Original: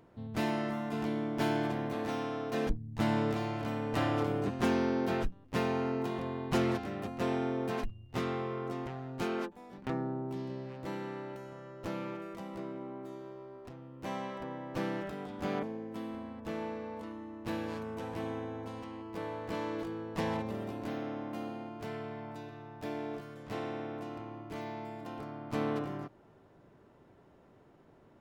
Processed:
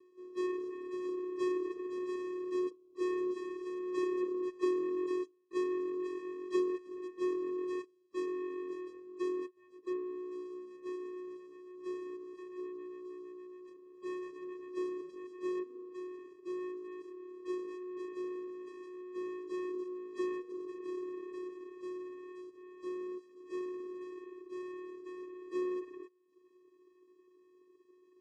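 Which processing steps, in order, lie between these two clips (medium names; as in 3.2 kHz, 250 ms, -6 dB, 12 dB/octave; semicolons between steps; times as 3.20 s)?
CVSD coder 64 kbps; Chebyshev band-stop 1.1–2.4 kHz, order 2; de-hum 134.6 Hz, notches 4; vocoder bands 4, square 364 Hz; reverb removal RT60 0.66 s; trim +1 dB; AAC 32 kbps 32 kHz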